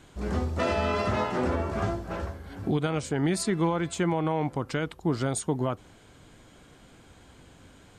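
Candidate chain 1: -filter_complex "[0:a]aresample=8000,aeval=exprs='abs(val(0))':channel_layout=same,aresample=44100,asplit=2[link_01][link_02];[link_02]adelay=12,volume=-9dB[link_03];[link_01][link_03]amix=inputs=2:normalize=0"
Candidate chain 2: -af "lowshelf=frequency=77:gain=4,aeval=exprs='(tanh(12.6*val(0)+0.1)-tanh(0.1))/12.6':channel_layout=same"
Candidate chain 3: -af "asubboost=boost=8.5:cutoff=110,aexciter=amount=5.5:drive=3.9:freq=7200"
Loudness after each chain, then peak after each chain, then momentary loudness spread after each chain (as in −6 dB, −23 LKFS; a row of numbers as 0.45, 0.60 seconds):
−32.5, −30.5, −25.5 LKFS; −14.0, −21.5, −6.5 dBFS; 7, 5, 22 LU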